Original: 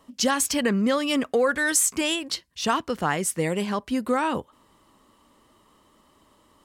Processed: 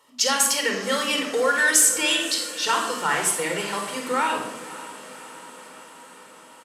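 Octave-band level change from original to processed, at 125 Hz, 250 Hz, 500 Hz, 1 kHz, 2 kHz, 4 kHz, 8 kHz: -9.5, -6.5, -1.0, +2.5, +5.0, +5.5, +5.5 dB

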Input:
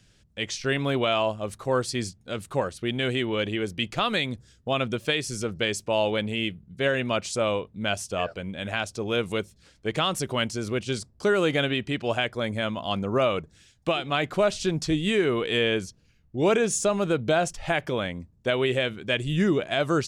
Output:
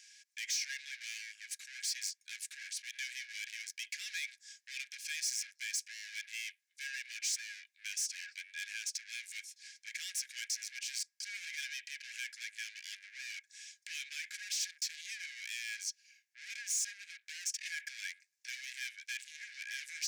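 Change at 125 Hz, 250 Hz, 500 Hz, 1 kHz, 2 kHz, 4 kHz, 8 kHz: under -40 dB, under -40 dB, under -40 dB, under -40 dB, -11.0 dB, -11.0 dB, -1.0 dB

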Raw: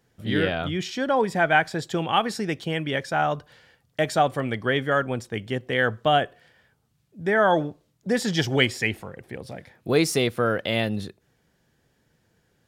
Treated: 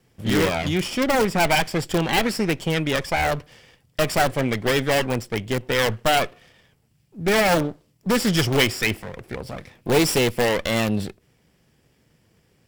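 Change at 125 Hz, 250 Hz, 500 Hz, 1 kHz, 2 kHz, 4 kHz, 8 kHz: +3.5, +3.5, +2.0, 0.0, +1.5, +4.0, +7.5 dB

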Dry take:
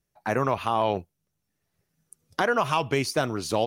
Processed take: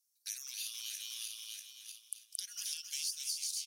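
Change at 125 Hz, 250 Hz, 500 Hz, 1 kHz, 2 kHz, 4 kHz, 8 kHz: under -40 dB, under -40 dB, under -40 dB, under -40 dB, -22.0 dB, -3.0 dB, +3.5 dB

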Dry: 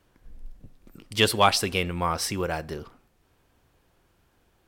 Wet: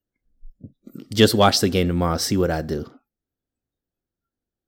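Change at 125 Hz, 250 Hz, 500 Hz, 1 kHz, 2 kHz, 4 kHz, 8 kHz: +8.5, +11.0, +7.5, +1.5, 0.0, +3.0, +3.5 dB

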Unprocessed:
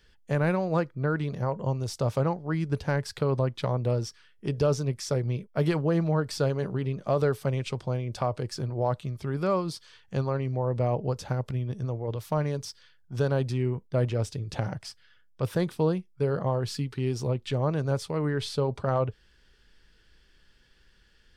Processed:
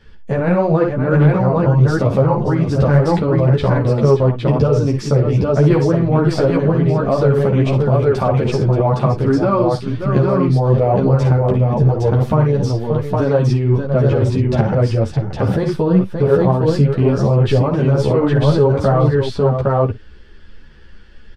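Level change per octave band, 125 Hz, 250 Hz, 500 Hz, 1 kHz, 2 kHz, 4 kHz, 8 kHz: +14.5 dB, +15.0 dB, +13.5 dB, +12.5 dB, +10.0 dB, +6.5 dB, n/a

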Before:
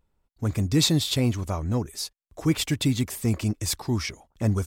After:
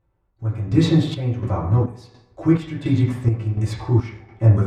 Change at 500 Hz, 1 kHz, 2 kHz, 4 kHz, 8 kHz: +5.5 dB, +5.5 dB, -1.5 dB, -8.0 dB, under -10 dB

